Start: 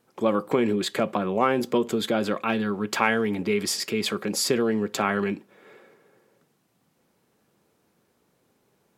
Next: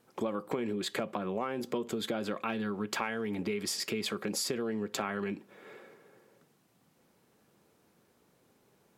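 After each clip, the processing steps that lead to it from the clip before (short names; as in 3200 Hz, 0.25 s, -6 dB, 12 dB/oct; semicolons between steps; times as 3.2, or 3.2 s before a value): compressor 6:1, threshold -31 dBFS, peak gain reduction 14.5 dB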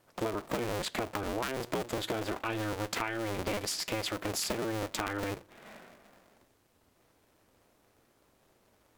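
cycle switcher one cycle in 2, inverted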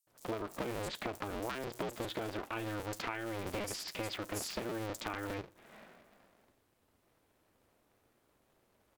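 bands offset in time highs, lows 70 ms, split 5800 Hz; gain -5 dB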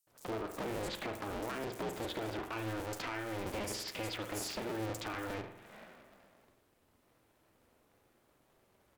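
soft clip -34 dBFS, distortion -14 dB; on a send at -6.5 dB: reverb RT60 0.80 s, pre-delay 45 ms; on the sum: gain +1.5 dB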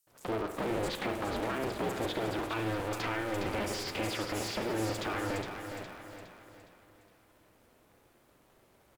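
on a send: feedback echo 0.413 s, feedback 44%, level -8 dB; on the sum: slew limiter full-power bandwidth 37 Hz; gain +5 dB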